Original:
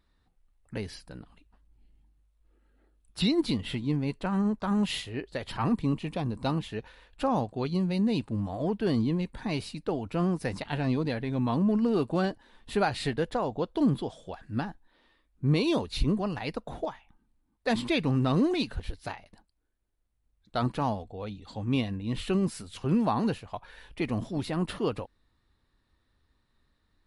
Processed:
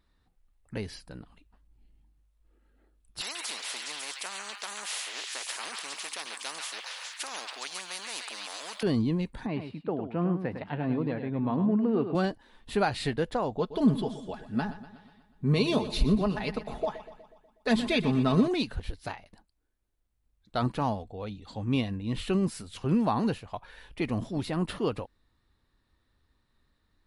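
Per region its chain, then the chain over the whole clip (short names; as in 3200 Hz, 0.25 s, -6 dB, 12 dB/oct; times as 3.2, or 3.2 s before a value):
3.21–8.83 HPF 850 Hz 24 dB/oct + delay with a stepping band-pass 0.138 s, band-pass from 2000 Hz, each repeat 0.7 oct, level -2.5 dB + spectral compressor 4:1
9.46–12.15 HPF 130 Hz + air absorption 490 m + echo 0.104 s -8.5 dB
13.58–18.48 comb 4.7 ms, depth 59% + feedback echo 0.122 s, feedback 57%, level -14 dB
whole clip: dry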